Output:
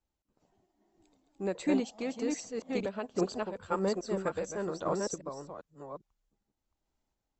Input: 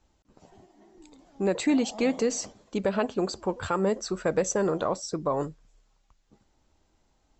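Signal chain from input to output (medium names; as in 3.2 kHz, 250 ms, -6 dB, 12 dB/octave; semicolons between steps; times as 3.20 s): chunks repeated in reverse 401 ms, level -3 dB; random-step tremolo; upward expansion 1.5:1, over -47 dBFS; trim -2.5 dB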